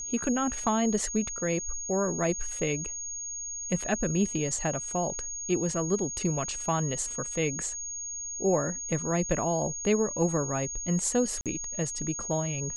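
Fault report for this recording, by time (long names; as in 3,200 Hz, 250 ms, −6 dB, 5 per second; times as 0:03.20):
whistle 6,600 Hz −34 dBFS
0:11.41–0:11.46: drop-out 47 ms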